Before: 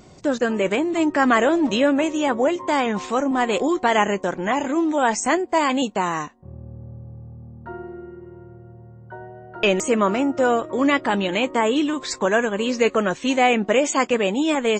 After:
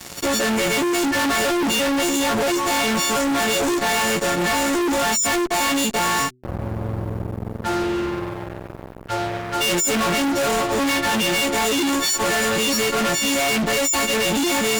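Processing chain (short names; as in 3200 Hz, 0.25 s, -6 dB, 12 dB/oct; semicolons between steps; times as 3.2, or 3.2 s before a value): frequency quantiser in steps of 4 st; fuzz box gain 41 dB, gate -41 dBFS; de-hum 125.9 Hz, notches 3; gain -6 dB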